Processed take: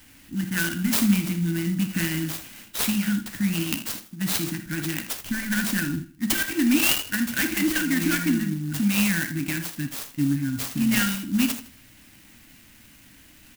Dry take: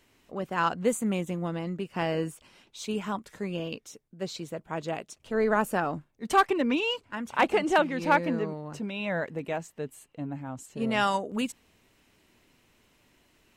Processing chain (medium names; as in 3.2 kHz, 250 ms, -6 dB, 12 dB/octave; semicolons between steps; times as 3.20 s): in parallel at -6 dB: wavefolder -22.5 dBFS; on the sum: compression 3:1, threshold -27 dBFS, peak gain reduction 8 dB; brick-wall FIR band-stop 340–1400 Hz; treble shelf 5.4 kHz +7.5 dB; feedback delay 80 ms, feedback 36%, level -14.5 dB; on a send at -6.5 dB: reverberation, pre-delay 3 ms; on the sum: sampling jitter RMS 0.059 ms; trim +8.5 dB